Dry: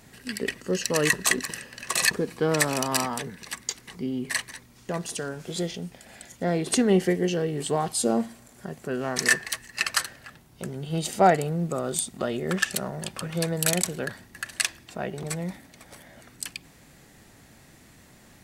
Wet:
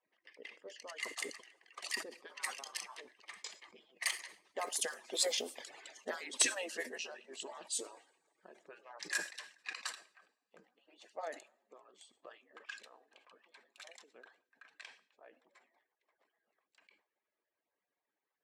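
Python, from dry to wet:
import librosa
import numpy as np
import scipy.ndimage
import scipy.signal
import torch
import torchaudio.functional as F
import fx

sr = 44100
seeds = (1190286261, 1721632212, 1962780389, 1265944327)

y = fx.hpss_only(x, sr, part='percussive')
y = fx.doppler_pass(y, sr, speed_mps=23, closest_m=9.5, pass_at_s=5.46)
y = fx.env_lowpass(y, sr, base_hz=1900.0, full_db=-37.0)
y = scipy.signal.sosfilt(scipy.signal.butter(2, 510.0, 'highpass', fs=sr, output='sos'), y)
y = fx.peak_eq(y, sr, hz=11000.0, db=2.5, octaves=2.4)
y = fx.notch(y, sr, hz=1400.0, q=7.3)
y = fx.rev_double_slope(y, sr, seeds[0], early_s=0.61, late_s=2.2, knee_db=-19, drr_db=20.0)
y = fx.sustainer(y, sr, db_per_s=150.0)
y = F.gain(torch.from_numpy(y), 3.0).numpy()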